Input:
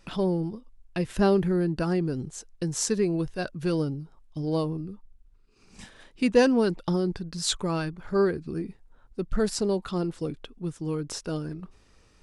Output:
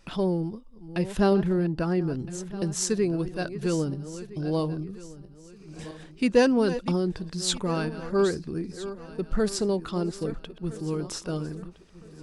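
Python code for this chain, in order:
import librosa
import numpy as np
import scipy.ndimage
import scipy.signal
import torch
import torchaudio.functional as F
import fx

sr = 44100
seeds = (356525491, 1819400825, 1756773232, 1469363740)

y = fx.reverse_delay_fb(x, sr, ms=657, feedback_pct=52, wet_db=-13.0)
y = fx.high_shelf(y, sr, hz=5600.0, db=-9.5, at=(1.33, 2.19))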